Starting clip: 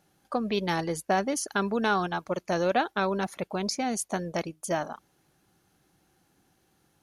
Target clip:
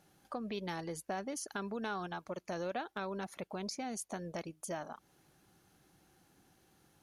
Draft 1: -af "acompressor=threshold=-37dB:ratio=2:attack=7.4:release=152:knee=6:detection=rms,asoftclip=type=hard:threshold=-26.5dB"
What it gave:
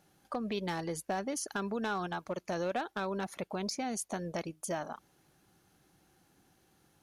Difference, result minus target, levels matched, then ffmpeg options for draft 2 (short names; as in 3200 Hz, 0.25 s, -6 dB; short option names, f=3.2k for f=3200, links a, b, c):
compressor: peak gain reduction -4.5 dB
-af "acompressor=threshold=-46dB:ratio=2:attack=7.4:release=152:knee=6:detection=rms,asoftclip=type=hard:threshold=-26.5dB"